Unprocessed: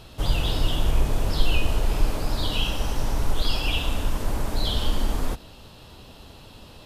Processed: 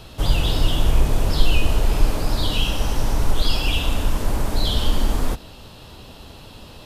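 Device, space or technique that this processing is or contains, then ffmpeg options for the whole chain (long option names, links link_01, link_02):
one-band saturation: -filter_complex "[0:a]acrossover=split=400|3800[link_01][link_02][link_03];[link_02]asoftclip=type=tanh:threshold=-28dB[link_04];[link_01][link_04][link_03]amix=inputs=3:normalize=0,volume=4.5dB"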